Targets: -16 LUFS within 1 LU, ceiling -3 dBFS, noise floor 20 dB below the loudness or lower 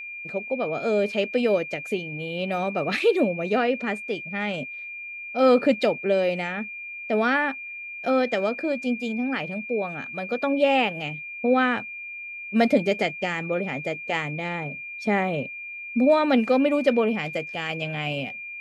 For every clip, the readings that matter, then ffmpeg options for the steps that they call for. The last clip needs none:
steady tone 2.4 kHz; tone level -34 dBFS; loudness -25.0 LUFS; peak level -7.5 dBFS; loudness target -16.0 LUFS
-> -af "bandreject=f=2400:w=30"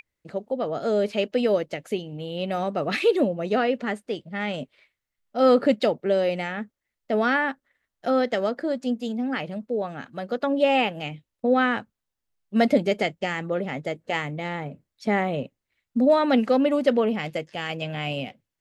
steady tone not found; loudness -25.0 LUFS; peak level -8.5 dBFS; loudness target -16.0 LUFS
-> -af "volume=2.82,alimiter=limit=0.708:level=0:latency=1"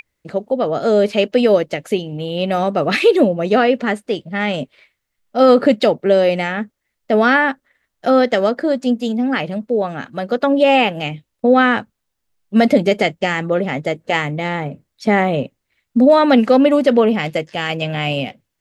loudness -16.5 LUFS; peak level -3.0 dBFS; noise floor -76 dBFS

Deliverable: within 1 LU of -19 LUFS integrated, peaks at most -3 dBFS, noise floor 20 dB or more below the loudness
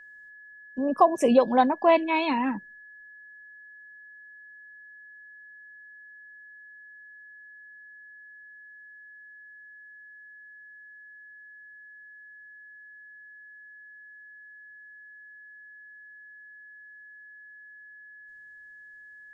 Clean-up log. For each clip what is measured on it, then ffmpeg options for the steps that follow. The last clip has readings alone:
steady tone 1.7 kHz; tone level -46 dBFS; loudness -23.0 LUFS; peak level -7.0 dBFS; loudness target -19.0 LUFS
-> -af "bandreject=f=1700:w=30"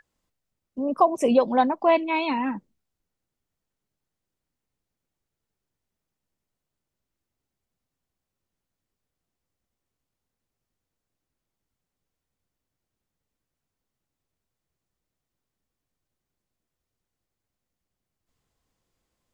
steady tone not found; loudness -22.5 LUFS; peak level -7.0 dBFS; loudness target -19.0 LUFS
-> -af "volume=1.5"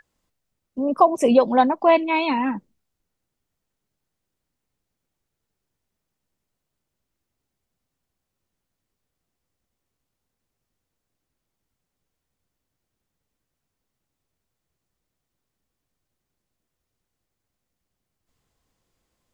loudness -19.0 LUFS; peak level -3.5 dBFS; noise floor -82 dBFS

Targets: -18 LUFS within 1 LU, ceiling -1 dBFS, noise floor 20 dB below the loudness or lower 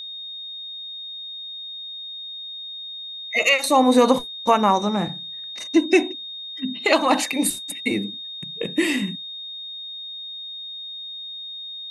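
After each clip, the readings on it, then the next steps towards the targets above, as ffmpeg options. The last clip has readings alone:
steady tone 3.7 kHz; tone level -32 dBFS; loudness -23.5 LUFS; peak level -4.0 dBFS; loudness target -18.0 LUFS
-> -af "bandreject=f=3700:w=30"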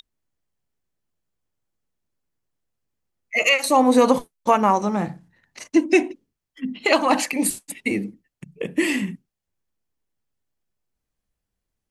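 steady tone not found; loudness -20.5 LUFS; peak level -4.5 dBFS; loudness target -18.0 LUFS
-> -af "volume=1.33"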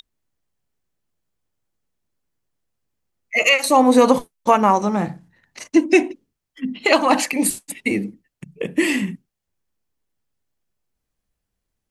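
loudness -18.0 LUFS; peak level -2.0 dBFS; noise floor -80 dBFS

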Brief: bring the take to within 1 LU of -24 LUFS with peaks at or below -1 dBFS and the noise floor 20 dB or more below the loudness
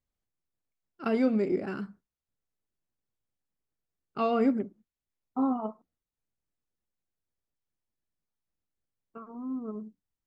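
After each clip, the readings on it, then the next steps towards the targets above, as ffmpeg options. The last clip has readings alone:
loudness -30.5 LUFS; peak level -15.0 dBFS; loudness target -24.0 LUFS
-> -af "volume=2.11"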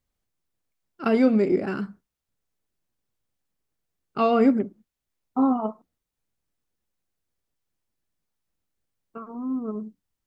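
loudness -24.0 LUFS; peak level -8.5 dBFS; noise floor -85 dBFS

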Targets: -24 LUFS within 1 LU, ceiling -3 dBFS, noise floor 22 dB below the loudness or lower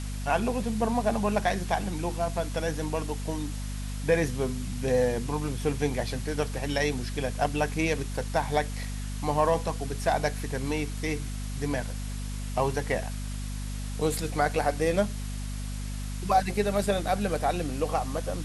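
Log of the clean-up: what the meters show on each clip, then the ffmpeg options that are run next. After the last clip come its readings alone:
hum 50 Hz; highest harmonic 250 Hz; hum level -31 dBFS; noise floor -34 dBFS; noise floor target -51 dBFS; loudness -29.0 LUFS; peak level -11.0 dBFS; loudness target -24.0 LUFS
-> -af "bandreject=f=50:t=h:w=6,bandreject=f=100:t=h:w=6,bandreject=f=150:t=h:w=6,bandreject=f=200:t=h:w=6,bandreject=f=250:t=h:w=6"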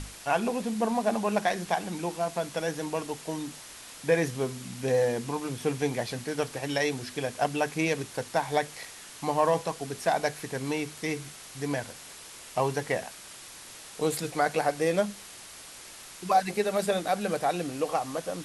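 hum not found; noise floor -46 dBFS; noise floor target -52 dBFS
-> -af "afftdn=nr=6:nf=-46"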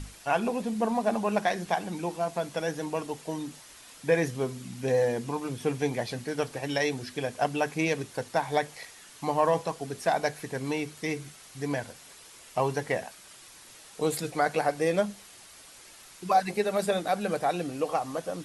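noise floor -51 dBFS; noise floor target -52 dBFS
-> -af "afftdn=nr=6:nf=-51"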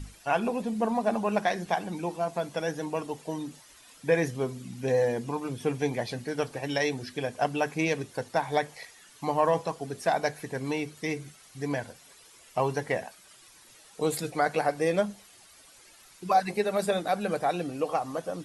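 noise floor -55 dBFS; loudness -29.5 LUFS; peak level -12.0 dBFS; loudness target -24.0 LUFS
-> -af "volume=1.88"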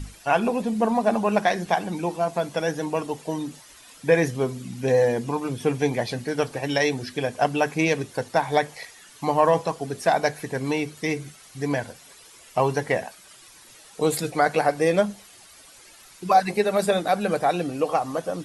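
loudness -24.0 LUFS; peak level -6.5 dBFS; noise floor -49 dBFS

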